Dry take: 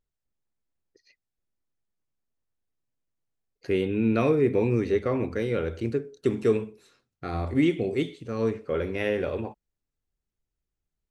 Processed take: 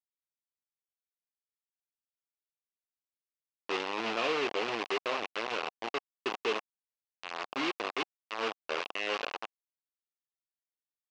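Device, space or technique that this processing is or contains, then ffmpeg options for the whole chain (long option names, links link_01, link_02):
hand-held game console: -filter_complex "[0:a]asettb=1/sr,asplit=3[link_01][link_02][link_03];[link_01]atrim=end=7.294[link_04];[link_02]atrim=start=7.29:end=9.07,asetpts=PTS-STARTPTS,afade=type=in:duration=0.004:curve=qsin,afade=type=out:start_time=1.776:duration=0.004:curve=qsin,highpass=88[link_05];[link_03]atrim=start=9.066[link_06];[link_04][link_05]acrossfade=duration=0.004:curve1=hsin:curve2=qsin[link_07];[link_07][link_06]acrossfade=duration=0.004:curve1=qsin:curve2=hsin,acrusher=bits=3:mix=0:aa=0.000001,highpass=430,equalizer=frequency=760:width_type=q:width=4:gain=4,equalizer=frequency=1100:width_type=q:width=4:gain=5,equalizer=frequency=2700:width_type=q:width=4:gain=8,lowpass=frequency=5200:width=0.5412,lowpass=frequency=5200:width=1.3066,volume=-8dB"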